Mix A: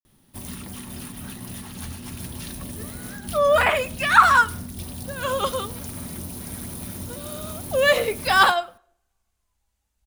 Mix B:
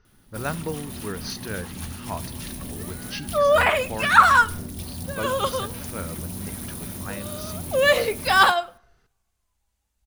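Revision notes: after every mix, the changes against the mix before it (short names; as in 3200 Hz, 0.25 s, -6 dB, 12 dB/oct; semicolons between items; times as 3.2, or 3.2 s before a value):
speech: unmuted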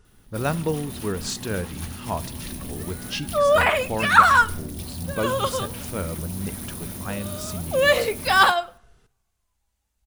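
speech: remove rippled Chebyshev low-pass 6300 Hz, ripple 6 dB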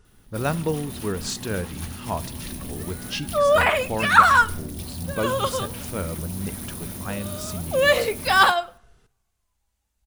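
none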